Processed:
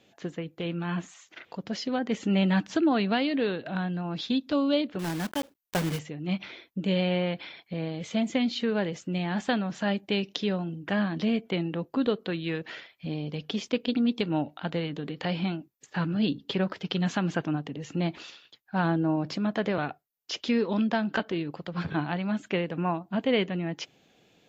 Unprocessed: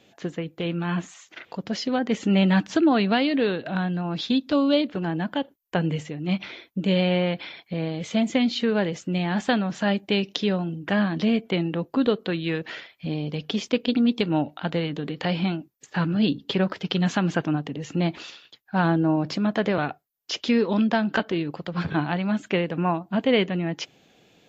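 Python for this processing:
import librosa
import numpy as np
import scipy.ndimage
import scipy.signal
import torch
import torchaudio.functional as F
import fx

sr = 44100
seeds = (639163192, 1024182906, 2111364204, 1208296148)

y = fx.block_float(x, sr, bits=3, at=(4.99, 6.01))
y = y * 10.0 ** (-4.5 / 20.0)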